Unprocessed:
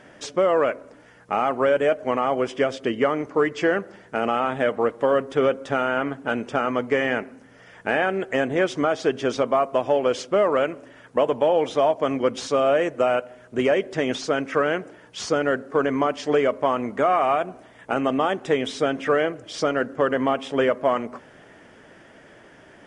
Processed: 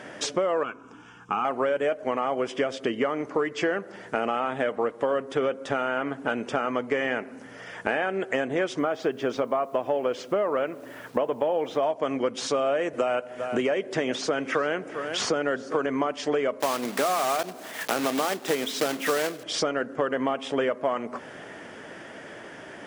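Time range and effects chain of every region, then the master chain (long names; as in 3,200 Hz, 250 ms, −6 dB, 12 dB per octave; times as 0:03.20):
0:00.63–0:01.45: high-shelf EQ 7,600 Hz −11 dB + phaser with its sweep stopped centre 2,900 Hz, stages 8
0:08.79–0:11.83: low-pass filter 2,500 Hz 6 dB per octave + bit-depth reduction 10 bits, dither none
0:12.93–0:15.86: single-tap delay 397 ms −20.5 dB + multiband upward and downward compressor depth 40%
0:16.60–0:19.45: one scale factor per block 3 bits + high-pass filter 140 Hz 24 dB per octave + one half of a high-frequency compander encoder only
whole clip: high-pass filter 180 Hz 6 dB per octave; downward compressor 3 to 1, threshold −34 dBFS; level +7.5 dB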